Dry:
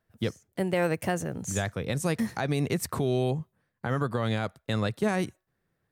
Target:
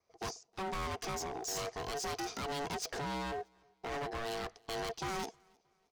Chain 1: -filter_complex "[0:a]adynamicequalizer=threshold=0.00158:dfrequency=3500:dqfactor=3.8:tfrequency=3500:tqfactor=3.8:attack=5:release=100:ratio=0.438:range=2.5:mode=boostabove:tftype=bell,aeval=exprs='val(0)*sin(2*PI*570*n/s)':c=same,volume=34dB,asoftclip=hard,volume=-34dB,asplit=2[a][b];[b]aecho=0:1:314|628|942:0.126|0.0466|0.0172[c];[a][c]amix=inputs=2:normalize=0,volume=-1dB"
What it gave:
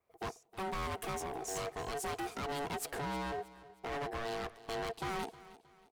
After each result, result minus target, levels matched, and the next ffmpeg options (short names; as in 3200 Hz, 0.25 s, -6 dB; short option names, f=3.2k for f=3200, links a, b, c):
echo-to-direct +12 dB; 4000 Hz band -3.0 dB
-filter_complex "[0:a]adynamicequalizer=threshold=0.00158:dfrequency=3500:dqfactor=3.8:tfrequency=3500:tqfactor=3.8:attack=5:release=100:ratio=0.438:range=2.5:mode=boostabove:tftype=bell,aeval=exprs='val(0)*sin(2*PI*570*n/s)':c=same,volume=34dB,asoftclip=hard,volume=-34dB,asplit=2[a][b];[b]aecho=0:1:314|628:0.0316|0.0117[c];[a][c]amix=inputs=2:normalize=0,volume=-1dB"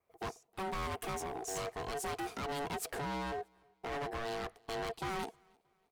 4000 Hz band -3.0 dB
-filter_complex "[0:a]adynamicequalizer=threshold=0.00158:dfrequency=3500:dqfactor=3.8:tfrequency=3500:tqfactor=3.8:attack=5:release=100:ratio=0.438:range=2.5:mode=boostabove:tftype=bell,lowpass=f=5.5k:t=q:w=7.5,aeval=exprs='val(0)*sin(2*PI*570*n/s)':c=same,volume=34dB,asoftclip=hard,volume=-34dB,asplit=2[a][b];[b]aecho=0:1:314|628:0.0316|0.0117[c];[a][c]amix=inputs=2:normalize=0,volume=-1dB"